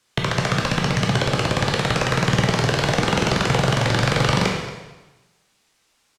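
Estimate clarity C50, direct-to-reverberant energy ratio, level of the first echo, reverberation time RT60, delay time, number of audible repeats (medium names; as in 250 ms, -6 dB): 3.0 dB, -1.0 dB, -16.5 dB, 1.1 s, 230 ms, 1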